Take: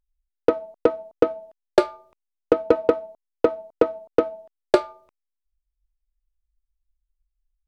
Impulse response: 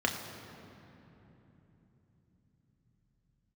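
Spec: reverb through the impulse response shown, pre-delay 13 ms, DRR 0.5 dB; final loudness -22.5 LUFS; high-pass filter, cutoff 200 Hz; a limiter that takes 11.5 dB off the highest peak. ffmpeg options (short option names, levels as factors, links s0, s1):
-filter_complex "[0:a]highpass=200,alimiter=limit=0.211:level=0:latency=1,asplit=2[s0][s1];[1:a]atrim=start_sample=2205,adelay=13[s2];[s1][s2]afir=irnorm=-1:irlink=0,volume=0.335[s3];[s0][s3]amix=inputs=2:normalize=0,volume=2.24"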